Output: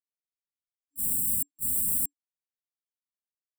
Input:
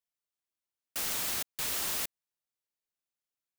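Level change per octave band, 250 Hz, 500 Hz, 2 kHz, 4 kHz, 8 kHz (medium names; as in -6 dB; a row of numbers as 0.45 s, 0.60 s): +5.5 dB, under -35 dB, under -40 dB, under -40 dB, +5.0 dB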